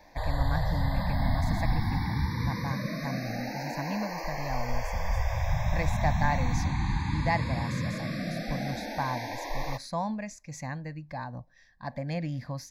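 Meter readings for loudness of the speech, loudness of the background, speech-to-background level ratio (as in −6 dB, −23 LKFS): −36.0 LKFS, −32.0 LKFS, −4.0 dB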